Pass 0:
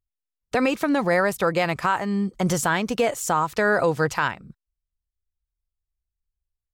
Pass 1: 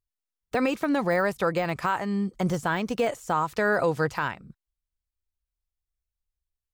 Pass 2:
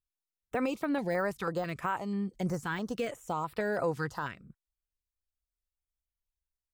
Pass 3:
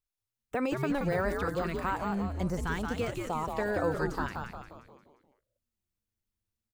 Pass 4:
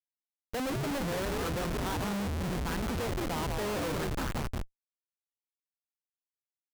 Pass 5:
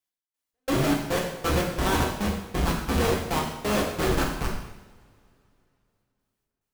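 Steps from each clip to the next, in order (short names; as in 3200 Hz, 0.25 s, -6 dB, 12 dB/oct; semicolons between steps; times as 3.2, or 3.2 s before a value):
de-esser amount 80%; gain -3 dB
stepped notch 6.1 Hz 610–6400 Hz; gain -6 dB
frequency-shifting echo 0.176 s, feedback 50%, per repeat -120 Hz, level -4 dB
Schmitt trigger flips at -35.5 dBFS; gain +1.5 dB
step gate "x...xx..xxx.." 177 bpm -60 dB; two-slope reverb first 0.86 s, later 3.1 s, from -24 dB, DRR -2.5 dB; gain +6 dB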